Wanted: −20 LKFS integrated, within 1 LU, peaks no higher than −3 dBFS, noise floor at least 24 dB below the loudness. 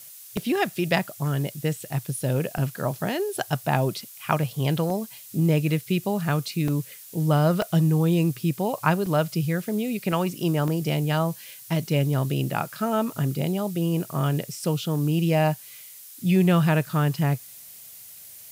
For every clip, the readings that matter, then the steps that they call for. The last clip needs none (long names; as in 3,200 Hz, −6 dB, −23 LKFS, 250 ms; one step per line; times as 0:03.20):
number of dropouts 8; longest dropout 2.8 ms; background noise floor −45 dBFS; target noise floor −49 dBFS; integrated loudness −25.0 LKFS; sample peak −5.0 dBFS; target loudness −20.0 LKFS
→ repair the gap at 0:00.37/0:02.58/0:04.90/0:06.68/0:07.62/0:09.06/0:10.12/0:10.68, 2.8 ms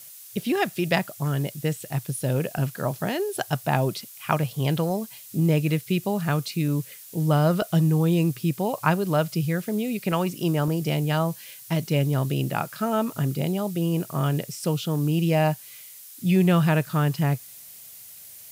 number of dropouts 0; background noise floor −45 dBFS; target noise floor −49 dBFS
→ broadband denoise 6 dB, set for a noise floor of −45 dBFS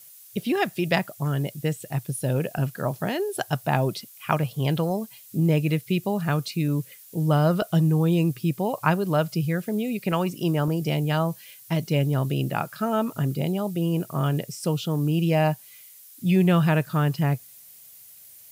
background noise floor −48 dBFS; target noise floor −49 dBFS
→ broadband denoise 6 dB, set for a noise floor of −48 dBFS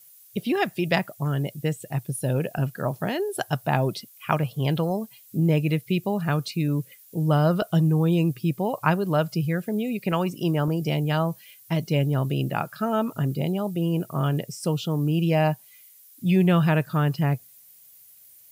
background noise floor −52 dBFS; integrated loudness −25.0 LKFS; sample peak −5.0 dBFS; target loudness −20.0 LKFS
→ level +5 dB
brickwall limiter −3 dBFS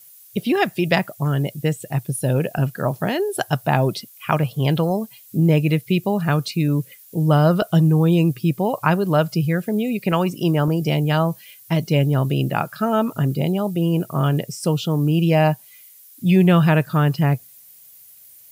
integrated loudness −20.0 LKFS; sample peak −3.0 dBFS; background noise floor −47 dBFS